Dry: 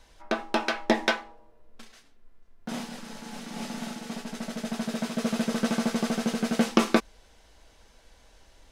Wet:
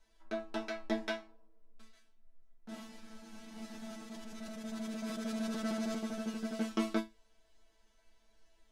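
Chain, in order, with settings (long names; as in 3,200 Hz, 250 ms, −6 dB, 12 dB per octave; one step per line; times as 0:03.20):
resonators tuned to a chord A3 fifth, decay 0.21 s
0:03.69–0:05.99: level that may fall only so fast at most 25 dB per second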